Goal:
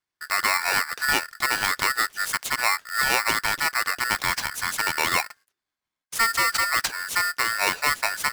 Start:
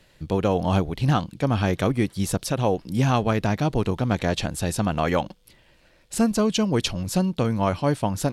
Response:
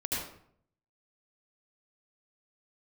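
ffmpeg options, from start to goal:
-af "agate=range=-29dB:threshold=-47dB:ratio=16:detection=peak,lowshelf=frequency=110:gain=-10,aeval=exprs='val(0)*sgn(sin(2*PI*1600*n/s))':channel_layout=same"

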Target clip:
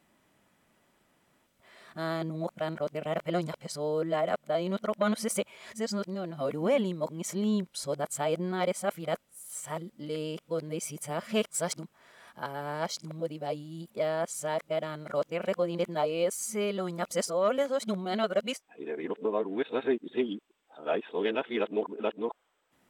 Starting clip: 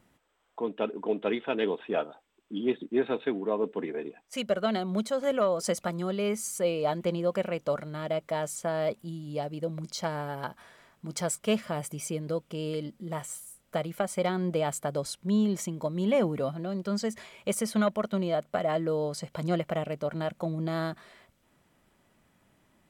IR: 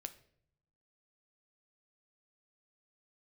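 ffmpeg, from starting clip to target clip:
-af "areverse,lowshelf=frequency=140:gain=-10.5"

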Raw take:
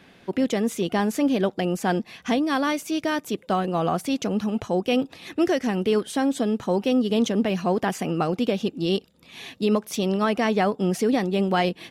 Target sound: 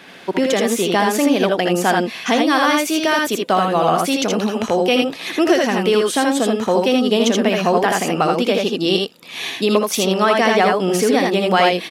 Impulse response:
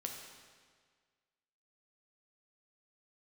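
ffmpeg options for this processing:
-filter_complex "[0:a]highpass=frequency=500:poles=1,aecho=1:1:63|80:0.355|0.708,asplit=2[link_01][link_02];[link_02]acompressor=threshold=-31dB:ratio=6,volume=0dB[link_03];[link_01][link_03]amix=inputs=2:normalize=0,volume=6.5dB"

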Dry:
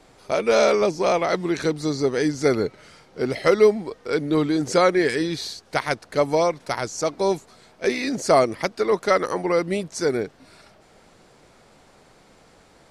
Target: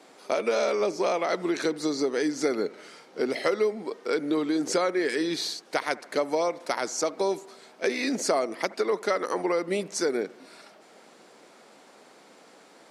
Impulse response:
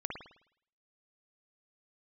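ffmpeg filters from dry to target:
-filter_complex "[0:a]highpass=frequency=220:width=0.5412,highpass=frequency=220:width=1.3066,acompressor=threshold=-24dB:ratio=4,asplit=2[link_01][link_02];[1:a]atrim=start_sample=2205,asetrate=33075,aresample=44100[link_03];[link_02][link_03]afir=irnorm=-1:irlink=0,volume=-19.5dB[link_04];[link_01][link_04]amix=inputs=2:normalize=0"

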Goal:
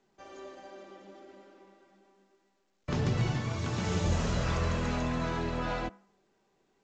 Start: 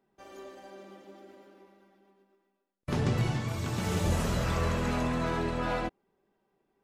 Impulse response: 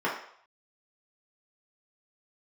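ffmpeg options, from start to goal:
-filter_complex "[0:a]acrossover=split=170|3000[link_01][link_02][link_03];[link_02]acompressor=threshold=-31dB:ratio=6[link_04];[link_01][link_04][link_03]amix=inputs=3:normalize=0,bandreject=frequency=197.3:width_type=h:width=4,bandreject=frequency=394.6:width_type=h:width=4,asplit=2[link_05][link_06];[1:a]atrim=start_sample=2205[link_07];[link_06][link_07]afir=irnorm=-1:irlink=0,volume=-29dB[link_08];[link_05][link_08]amix=inputs=2:normalize=0" -ar 16000 -c:a pcm_mulaw

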